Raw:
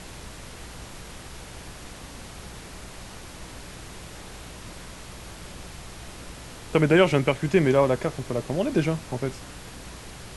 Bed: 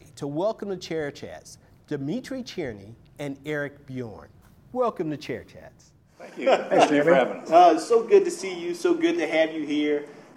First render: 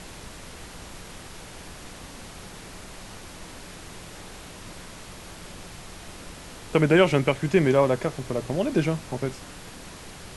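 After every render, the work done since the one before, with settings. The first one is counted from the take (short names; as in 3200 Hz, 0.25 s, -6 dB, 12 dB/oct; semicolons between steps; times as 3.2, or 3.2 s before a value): de-hum 60 Hz, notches 2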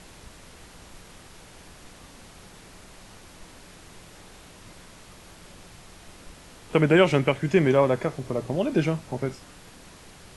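noise print and reduce 6 dB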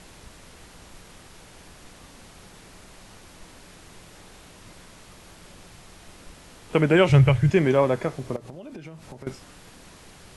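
7.09–7.5 resonant low shelf 160 Hz +13 dB, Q 3; 8.36–9.27 compressor 12:1, threshold -36 dBFS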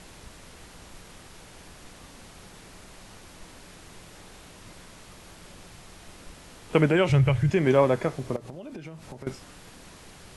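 6.89–7.67 compressor 1.5:1, threshold -24 dBFS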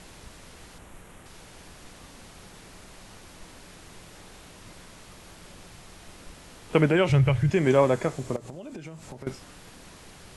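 0.78–1.26 bell 4800 Hz -11.5 dB 0.95 oct; 7.54–9.1 bell 7400 Hz +8.5 dB 0.46 oct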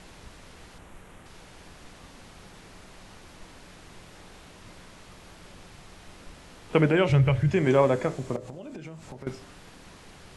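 high shelf 7600 Hz -9 dB; de-hum 56.26 Hz, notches 12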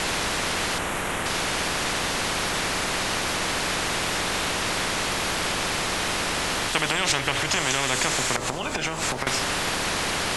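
in parallel at 0 dB: limiter -19.5 dBFS, peak gain reduction 11 dB; on the sum: spectral compressor 10:1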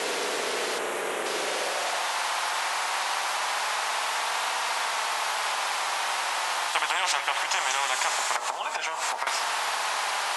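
flange 0.22 Hz, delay 4.2 ms, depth 1.6 ms, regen -52%; high-pass sweep 420 Hz -> 850 Hz, 1.42–2.13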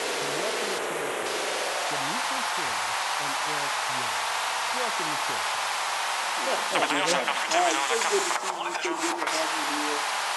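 add bed -11 dB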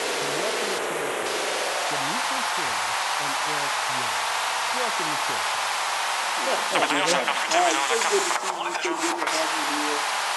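gain +2.5 dB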